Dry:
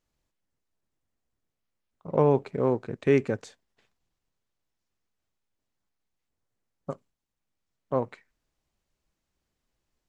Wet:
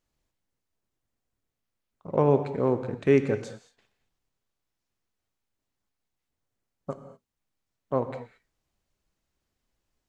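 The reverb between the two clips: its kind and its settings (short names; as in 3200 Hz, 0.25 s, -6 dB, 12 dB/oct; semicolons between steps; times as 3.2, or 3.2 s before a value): non-linear reverb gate 0.25 s flat, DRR 9.5 dB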